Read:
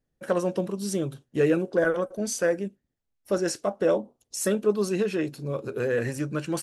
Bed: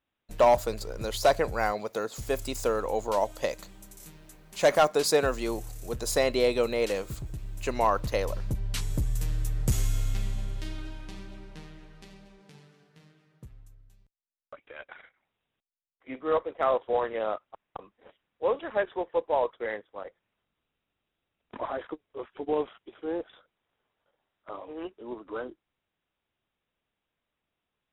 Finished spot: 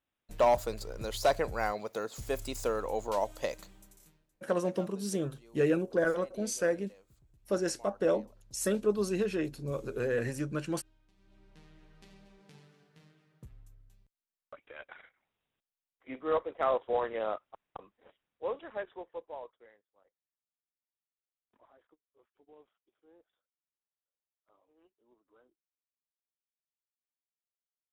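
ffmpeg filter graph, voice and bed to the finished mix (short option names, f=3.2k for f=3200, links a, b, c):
-filter_complex "[0:a]adelay=4200,volume=-5dB[a];[1:a]volume=20dB,afade=t=out:st=3.57:d=0.7:silence=0.0668344,afade=t=in:st=11.17:d=1.38:silence=0.0595662,afade=t=out:st=17.43:d=2.31:silence=0.0446684[b];[a][b]amix=inputs=2:normalize=0"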